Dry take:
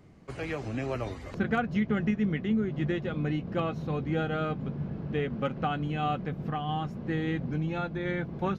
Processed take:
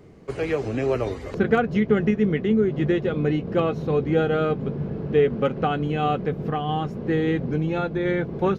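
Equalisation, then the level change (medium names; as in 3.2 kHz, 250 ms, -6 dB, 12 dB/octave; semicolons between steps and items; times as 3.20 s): peaking EQ 430 Hz +9.5 dB 0.59 oct; +5.0 dB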